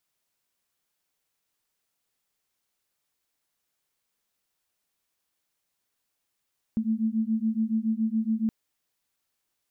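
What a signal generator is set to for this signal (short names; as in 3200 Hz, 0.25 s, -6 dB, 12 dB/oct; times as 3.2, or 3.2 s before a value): beating tones 218 Hz, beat 7.1 Hz, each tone -26.5 dBFS 1.72 s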